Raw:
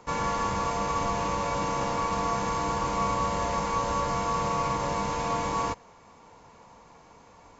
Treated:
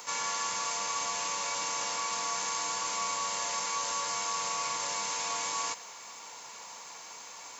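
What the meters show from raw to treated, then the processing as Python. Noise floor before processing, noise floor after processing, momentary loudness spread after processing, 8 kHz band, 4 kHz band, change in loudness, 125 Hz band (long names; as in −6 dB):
−54 dBFS, −47 dBFS, 13 LU, can't be measured, +5.0 dB, −3.0 dB, −24.5 dB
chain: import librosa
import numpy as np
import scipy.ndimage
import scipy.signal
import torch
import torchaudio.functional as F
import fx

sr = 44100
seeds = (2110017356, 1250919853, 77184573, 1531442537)

p1 = np.diff(x, prepend=0.0)
p2 = fx.over_compress(p1, sr, threshold_db=-56.0, ratio=-1.0)
p3 = p1 + (p2 * librosa.db_to_amplitude(-1.5))
y = p3 * librosa.db_to_amplitude(8.5)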